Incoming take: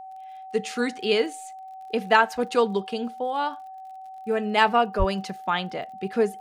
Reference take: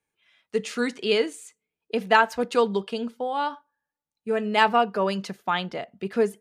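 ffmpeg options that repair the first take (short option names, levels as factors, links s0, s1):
-filter_complex "[0:a]adeclick=t=4,bandreject=f=760:w=30,asplit=3[s0][s1][s2];[s0]afade=t=out:st=4.98:d=0.02[s3];[s1]highpass=f=140:w=0.5412,highpass=f=140:w=1.3066,afade=t=in:st=4.98:d=0.02,afade=t=out:st=5.1:d=0.02[s4];[s2]afade=t=in:st=5.1:d=0.02[s5];[s3][s4][s5]amix=inputs=3:normalize=0"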